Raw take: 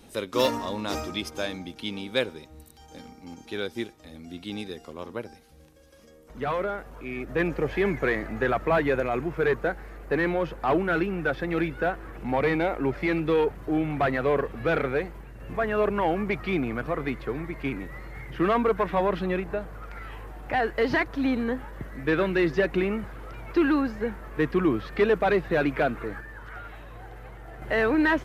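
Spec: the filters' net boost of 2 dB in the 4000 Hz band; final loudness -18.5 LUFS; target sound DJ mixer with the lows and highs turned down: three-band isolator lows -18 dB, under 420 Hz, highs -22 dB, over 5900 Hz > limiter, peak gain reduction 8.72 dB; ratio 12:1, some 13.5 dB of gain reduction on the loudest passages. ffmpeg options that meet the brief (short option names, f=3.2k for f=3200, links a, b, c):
-filter_complex "[0:a]equalizer=f=4k:t=o:g=3.5,acompressor=threshold=-31dB:ratio=12,acrossover=split=420 5900:gain=0.126 1 0.0794[a][b][c];[a][b][c]amix=inputs=3:normalize=0,volume=23.5dB,alimiter=limit=-7dB:level=0:latency=1"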